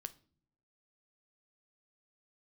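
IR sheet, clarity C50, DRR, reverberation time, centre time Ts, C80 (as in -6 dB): 19.0 dB, 11.0 dB, not exponential, 3 ms, 24.5 dB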